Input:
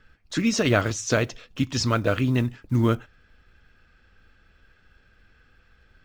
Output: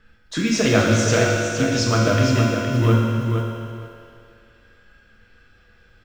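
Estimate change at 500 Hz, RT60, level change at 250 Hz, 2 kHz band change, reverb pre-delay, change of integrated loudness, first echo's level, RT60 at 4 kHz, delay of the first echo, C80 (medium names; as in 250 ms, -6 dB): +6.0 dB, 2.4 s, +4.5 dB, +6.0 dB, 4 ms, +5.0 dB, -6.5 dB, 2.3 s, 465 ms, 0.0 dB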